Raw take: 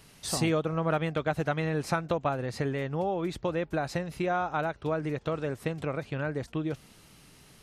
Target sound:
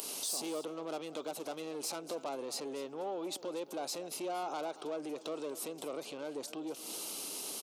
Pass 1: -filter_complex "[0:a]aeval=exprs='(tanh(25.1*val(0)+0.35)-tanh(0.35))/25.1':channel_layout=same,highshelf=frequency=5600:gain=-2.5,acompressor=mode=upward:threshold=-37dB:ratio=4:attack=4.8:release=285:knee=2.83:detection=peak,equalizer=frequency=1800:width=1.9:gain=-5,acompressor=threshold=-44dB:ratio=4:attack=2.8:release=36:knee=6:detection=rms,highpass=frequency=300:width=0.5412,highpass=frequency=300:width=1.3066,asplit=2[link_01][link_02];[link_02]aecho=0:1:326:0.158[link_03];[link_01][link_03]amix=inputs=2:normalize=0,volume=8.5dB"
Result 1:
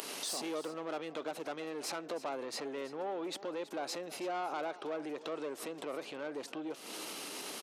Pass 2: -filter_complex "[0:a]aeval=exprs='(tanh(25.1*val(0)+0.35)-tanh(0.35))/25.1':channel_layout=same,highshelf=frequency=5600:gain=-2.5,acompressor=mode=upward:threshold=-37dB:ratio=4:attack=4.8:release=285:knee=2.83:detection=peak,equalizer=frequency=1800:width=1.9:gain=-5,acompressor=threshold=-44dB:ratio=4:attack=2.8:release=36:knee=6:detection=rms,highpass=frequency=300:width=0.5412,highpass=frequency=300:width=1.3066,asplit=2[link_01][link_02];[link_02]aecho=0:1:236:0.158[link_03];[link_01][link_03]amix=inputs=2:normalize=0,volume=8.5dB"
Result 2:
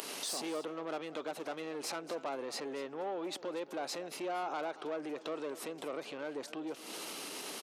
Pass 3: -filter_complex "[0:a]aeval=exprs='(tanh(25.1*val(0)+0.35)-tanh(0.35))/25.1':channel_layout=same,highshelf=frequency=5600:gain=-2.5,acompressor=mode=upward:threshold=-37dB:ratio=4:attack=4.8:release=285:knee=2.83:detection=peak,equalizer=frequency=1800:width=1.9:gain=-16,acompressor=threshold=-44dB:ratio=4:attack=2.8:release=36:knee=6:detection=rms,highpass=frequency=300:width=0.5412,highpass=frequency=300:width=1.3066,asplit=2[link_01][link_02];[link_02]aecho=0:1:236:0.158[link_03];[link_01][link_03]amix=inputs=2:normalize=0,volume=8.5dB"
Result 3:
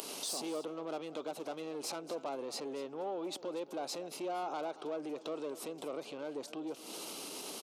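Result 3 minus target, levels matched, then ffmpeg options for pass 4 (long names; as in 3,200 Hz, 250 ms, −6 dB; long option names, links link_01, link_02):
8,000 Hz band −3.5 dB
-filter_complex "[0:a]aeval=exprs='(tanh(25.1*val(0)+0.35)-tanh(0.35))/25.1':channel_layout=same,highshelf=frequency=5600:gain=8.5,acompressor=mode=upward:threshold=-37dB:ratio=4:attack=4.8:release=285:knee=2.83:detection=peak,equalizer=frequency=1800:width=1.9:gain=-16,acompressor=threshold=-44dB:ratio=4:attack=2.8:release=36:knee=6:detection=rms,highpass=frequency=300:width=0.5412,highpass=frequency=300:width=1.3066,asplit=2[link_01][link_02];[link_02]aecho=0:1:236:0.158[link_03];[link_01][link_03]amix=inputs=2:normalize=0,volume=8.5dB"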